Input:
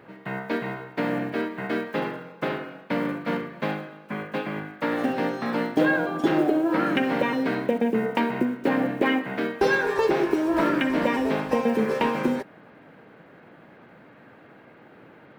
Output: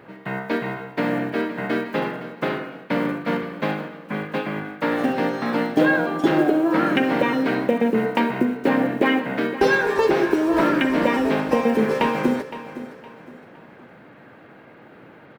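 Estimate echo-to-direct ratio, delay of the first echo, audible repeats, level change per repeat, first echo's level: −13.5 dB, 514 ms, 3, −9.5 dB, −14.0 dB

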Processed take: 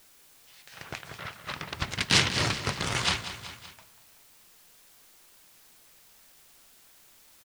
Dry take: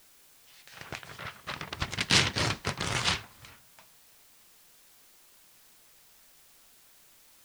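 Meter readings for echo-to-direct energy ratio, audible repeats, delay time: −10.5 dB, 3, 190 ms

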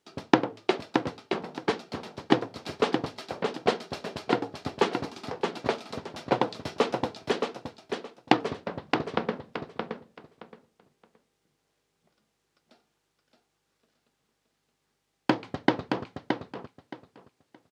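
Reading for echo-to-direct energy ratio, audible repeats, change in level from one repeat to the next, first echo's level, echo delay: −5.5 dB, 3, −13.5 dB, −5.5 dB, 621 ms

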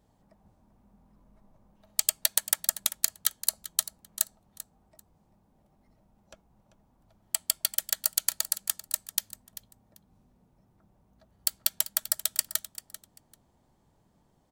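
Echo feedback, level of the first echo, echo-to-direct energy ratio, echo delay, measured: 19%, −15.0 dB, −15.0 dB, 391 ms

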